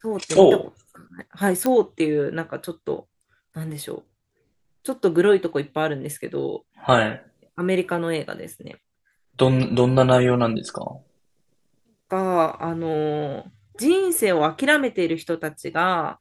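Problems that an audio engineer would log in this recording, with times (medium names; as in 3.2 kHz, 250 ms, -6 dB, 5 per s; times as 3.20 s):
1.66 s: pop -9 dBFS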